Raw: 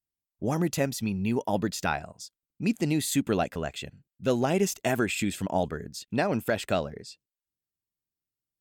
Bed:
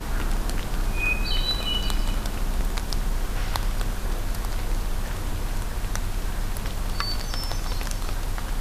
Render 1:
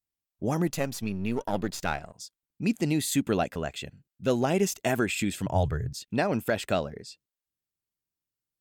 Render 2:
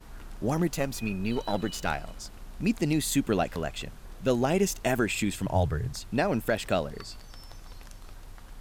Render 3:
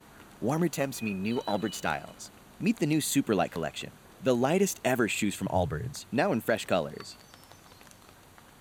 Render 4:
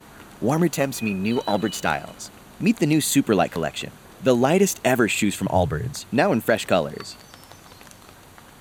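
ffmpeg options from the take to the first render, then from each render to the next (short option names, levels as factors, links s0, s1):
-filter_complex "[0:a]asettb=1/sr,asplit=3[s0][s1][s2];[s0]atrim=end=0.674[s3];[s1]atrim=start=0.67:end=2.14,asetpts=PTS-STARTPTS,afade=t=in:d=0.004:c=qsin,afade=t=out:st=1.466:d=0.004:c=qsin,aeval=exprs='if(lt(val(0),0),0.447*val(0),val(0))':c=same[s4];[s2]atrim=start=2.136[s5];[s3][s4]acrossfade=d=0.004:c1=hsin:c2=qsin[s6];[s6][s5]acrossfade=d=0.004:c1=qsin:c2=hsin,asettb=1/sr,asplit=3[s7][s8][s9];[s7]atrim=end=5.464[s10];[s8]atrim=start=5.46:end=5.93,asetpts=PTS-STARTPTS,afade=t=in:d=0.004:c=qsin,afade=t=out:st=0.466:d=0.004:c=qsin,lowshelf=f=160:t=q:w=3:g=9.5[s11];[s9]atrim=start=5.926[s12];[s10][s11]acrossfade=d=0.004:c1=hsin:c2=qsin[s13];[s13][s12]acrossfade=d=0.004:c1=qsin:c2=hsin"
-filter_complex "[1:a]volume=0.126[s0];[0:a][s0]amix=inputs=2:normalize=0"
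-af "highpass=130,bandreject=f=5200:w=6.6"
-af "volume=2.37"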